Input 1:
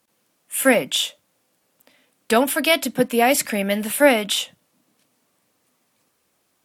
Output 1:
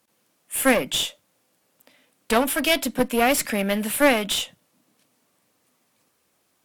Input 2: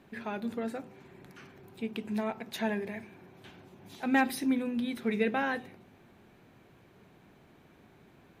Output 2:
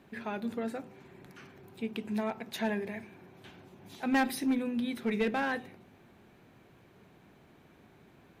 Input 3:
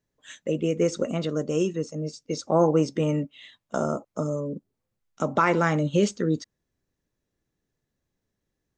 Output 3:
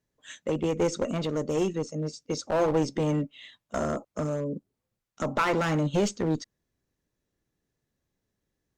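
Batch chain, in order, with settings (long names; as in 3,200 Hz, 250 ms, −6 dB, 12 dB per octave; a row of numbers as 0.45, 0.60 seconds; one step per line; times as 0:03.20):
harmonic generator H 3 −42 dB, 6 −33 dB, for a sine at −1 dBFS
asymmetric clip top −24 dBFS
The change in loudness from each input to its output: −2.5, −1.0, −3.0 LU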